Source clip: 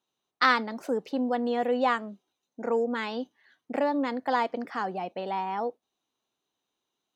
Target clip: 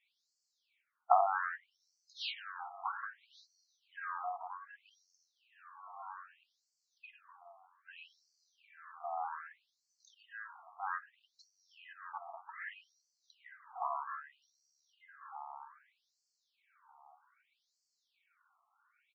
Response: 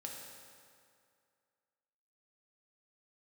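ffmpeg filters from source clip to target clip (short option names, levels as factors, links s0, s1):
-filter_complex "[0:a]asplit=2[s0][s1];[s1]asplit=5[s2][s3][s4][s5][s6];[s2]adelay=180,afreqshift=-62,volume=0.0891[s7];[s3]adelay=360,afreqshift=-124,volume=0.0543[s8];[s4]adelay=540,afreqshift=-186,volume=0.0331[s9];[s5]adelay=720,afreqshift=-248,volume=0.0202[s10];[s6]adelay=900,afreqshift=-310,volume=0.0123[s11];[s7][s8][s9][s10][s11]amix=inputs=5:normalize=0[s12];[s0][s12]amix=inputs=2:normalize=0,acompressor=threshold=0.0251:ratio=4,asplit=2[s13][s14];[s14]adelay=425,lowpass=f=2200:p=1,volume=0.531,asplit=2[s15][s16];[s16]adelay=425,lowpass=f=2200:p=1,volume=0.29,asplit=2[s17][s18];[s18]adelay=425,lowpass=f=2200:p=1,volume=0.29,asplit=2[s19][s20];[s20]adelay=425,lowpass=f=2200:p=1,volume=0.29[s21];[s15][s17][s19][s21]amix=inputs=4:normalize=0[s22];[s13][s22]amix=inputs=2:normalize=0,asetrate=16493,aresample=44100,equalizer=f=2800:w=1.4:g=2.5,afftfilt=real='re*between(b*sr/1024,930*pow(6100/930,0.5+0.5*sin(2*PI*0.63*pts/sr))/1.41,930*pow(6100/930,0.5+0.5*sin(2*PI*0.63*pts/sr))*1.41)':imag='im*between(b*sr/1024,930*pow(6100/930,0.5+0.5*sin(2*PI*0.63*pts/sr))/1.41,930*pow(6100/930,0.5+0.5*sin(2*PI*0.63*pts/sr))*1.41)':win_size=1024:overlap=0.75,volume=4.22"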